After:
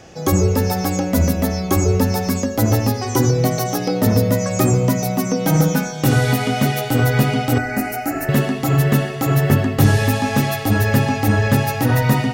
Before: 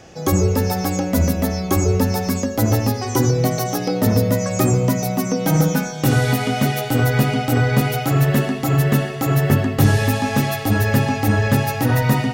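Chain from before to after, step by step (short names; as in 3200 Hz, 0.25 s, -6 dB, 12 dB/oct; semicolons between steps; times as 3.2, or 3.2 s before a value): 7.58–8.29 fixed phaser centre 700 Hz, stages 8; gain +1 dB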